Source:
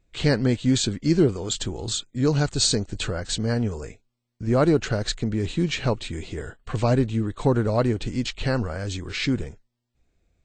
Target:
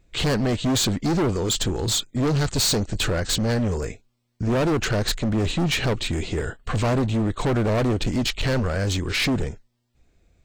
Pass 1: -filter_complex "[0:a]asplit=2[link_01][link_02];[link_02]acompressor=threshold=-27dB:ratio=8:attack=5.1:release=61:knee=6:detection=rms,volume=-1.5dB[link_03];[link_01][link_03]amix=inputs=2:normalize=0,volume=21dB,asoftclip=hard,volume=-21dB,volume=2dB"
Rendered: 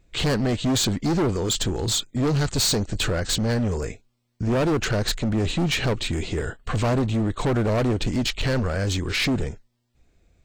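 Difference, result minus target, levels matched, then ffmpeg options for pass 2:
downward compressor: peak gain reduction +6.5 dB
-filter_complex "[0:a]asplit=2[link_01][link_02];[link_02]acompressor=threshold=-19.5dB:ratio=8:attack=5.1:release=61:knee=6:detection=rms,volume=-1.5dB[link_03];[link_01][link_03]amix=inputs=2:normalize=0,volume=21dB,asoftclip=hard,volume=-21dB,volume=2dB"

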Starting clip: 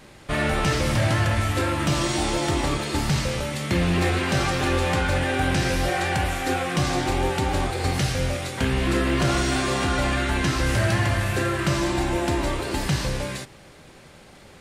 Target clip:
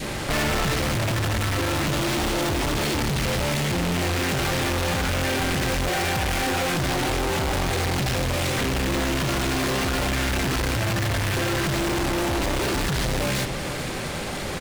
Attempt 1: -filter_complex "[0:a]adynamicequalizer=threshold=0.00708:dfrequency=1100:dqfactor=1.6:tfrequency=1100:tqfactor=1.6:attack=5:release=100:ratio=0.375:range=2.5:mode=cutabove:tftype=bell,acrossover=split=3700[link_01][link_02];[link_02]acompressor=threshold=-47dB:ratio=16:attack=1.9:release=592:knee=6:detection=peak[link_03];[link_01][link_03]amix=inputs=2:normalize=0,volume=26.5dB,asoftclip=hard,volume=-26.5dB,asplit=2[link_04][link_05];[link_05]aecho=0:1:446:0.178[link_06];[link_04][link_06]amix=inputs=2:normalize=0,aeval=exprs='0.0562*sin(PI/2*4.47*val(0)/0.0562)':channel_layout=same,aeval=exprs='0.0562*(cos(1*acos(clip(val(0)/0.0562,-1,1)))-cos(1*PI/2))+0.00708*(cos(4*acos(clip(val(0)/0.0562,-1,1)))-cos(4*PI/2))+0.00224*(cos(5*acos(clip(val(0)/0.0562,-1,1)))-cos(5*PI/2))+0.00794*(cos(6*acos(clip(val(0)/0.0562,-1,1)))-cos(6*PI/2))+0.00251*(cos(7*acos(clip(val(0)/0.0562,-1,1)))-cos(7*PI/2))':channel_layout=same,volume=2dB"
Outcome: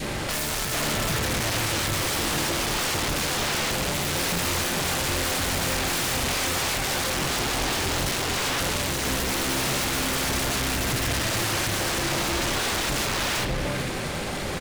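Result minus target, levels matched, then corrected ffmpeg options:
downward compressor: peak gain reduction +7 dB; gain into a clipping stage and back: distortion −4 dB
-filter_complex "[0:a]adynamicequalizer=threshold=0.00708:dfrequency=1100:dqfactor=1.6:tfrequency=1100:tqfactor=1.6:attack=5:release=100:ratio=0.375:range=2.5:mode=cutabove:tftype=bell,acrossover=split=3700[link_01][link_02];[link_02]acompressor=threshold=-39.5dB:ratio=16:attack=1.9:release=592:knee=6:detection=peak[link_03];[link_01][link_03]amix=inputs=2:normalize=0,volume=37.5dB,asoftclip=hard,volume=-37.5dB,asplit=2[link_04][link_05];[link_05]aecho=0:1:446:0.178[link_06];[link_04][link_06]amix=inputs=2:normalize=0,aeval=exprs='0.0562*sin(PI/2*4.47*val(0)/0.0562)':channel_layout=same,aeval=exprs='0.0562*(cos(1*acos(clip(val(0)/0.0562,-1,1)))-cos(1*PI/2))+0.00708*(cos(4*acos(clip(val(0)/0.0562,-1,1)))-cos(4*PI/2))+0.00224*(cos(5*acos(clip(val(0)/0.0562,-1,1)))-cos(5*PI/2))+0.00794*(cos(6*acos(clip(val(0)/0.0562,-1,1)))-cos(6*PI/2))+0.00251*(cos(7*acos(clip(val(0)/0.0562,-1,1)))-cos(7*PI/2))':channel_layout=same,volume=2dB"

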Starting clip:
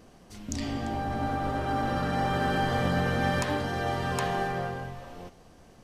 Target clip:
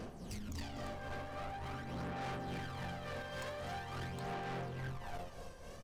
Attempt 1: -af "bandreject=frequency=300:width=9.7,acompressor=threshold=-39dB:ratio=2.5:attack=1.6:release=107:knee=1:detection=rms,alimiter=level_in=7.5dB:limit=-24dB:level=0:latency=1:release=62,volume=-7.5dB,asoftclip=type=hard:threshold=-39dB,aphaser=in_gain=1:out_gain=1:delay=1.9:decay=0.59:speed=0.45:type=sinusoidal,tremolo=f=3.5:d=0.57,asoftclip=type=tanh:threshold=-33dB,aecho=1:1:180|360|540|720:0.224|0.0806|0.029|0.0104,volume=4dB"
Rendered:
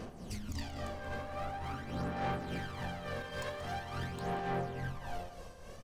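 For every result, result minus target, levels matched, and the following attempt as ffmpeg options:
soft clipping: distortion −11 dB; echo 67 ms early
-af "bandreject=frequency=300:width=9.7,acompressor=threshold=-39dB:ratio=2.5:attack=1.6:release=107:knee=1:detection=rms,alimiter=level_in=7.5dB:limit=-24dB:level=0:latency=1:release=62,volume=-7.5dB,asoftclip=type=hard:threshold=-39dB,aphaser=in_gain=1:out_gain=1:delay=1.9:decay=0.59:speed=0.45:type=sinusoidal,tremolo=f=3.5:d=0.57,asoftclip=type=tanh:threshold=-43dB,aecho=1:1:180|360|540|720:0.224|0.0806|0.029|0.0104,volume=4dB"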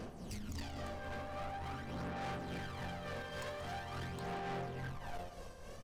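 echo 67 ms early
-af "bandreject=frequency=300:width=9.7,acompressor=threshold=-39dB:ratio=2.5:attack=1.6:release=107:knee=1:detection=rms,alimiter=level_in=7.5dB:limit=-24dB:level=0:latency=1:release=62,volume=-7.5dB,asoftclip=type=hard:threshold=-39dB,aphaser=in_gain=1:out_gain=1:delay=1.9:decay=0.59:speed=0.45:type=sinusoidal,tremolo=f=3.5:d=0.57,asoftclip=type=tanh:threshold=-43dB,aecho=1:1:247|494|741|988:0.224|0.0806|0.029|0.0104,volume=4dB"

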